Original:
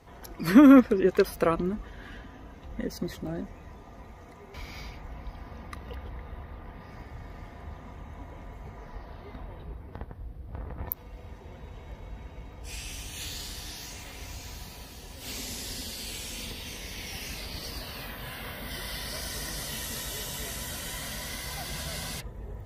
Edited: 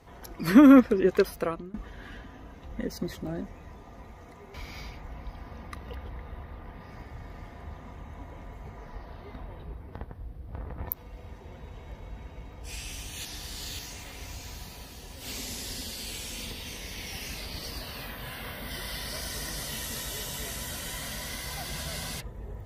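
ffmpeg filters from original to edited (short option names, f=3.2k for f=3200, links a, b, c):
-filter_complex "[0:a]asplit=4[a][b][c][d];[a]atrim=end=1.74,asetpts=PTS-STARTPTS,afade=t=out:st=1.18:d=0.56:silence=0.0794328[e];[b]atrim=start=1.74:end=13.252,asetpts=PTS-STARTPTS,afade=t=in:d=0.004:c=hsin:silence=0.0794328[f];[c]atrim=start=13.248:end=13.792,asetpts=PTS-STARTPTS,areverse[g];[d]atrim=start=13.788[h];[e][f]concat=n=2:v=0:a=1[i];[i][g]acrossfade=d=0.004:c1=hsin:c2=hsin[j];[j][h]acrossfade=d=0.004:c1=hsin:c2=hsin"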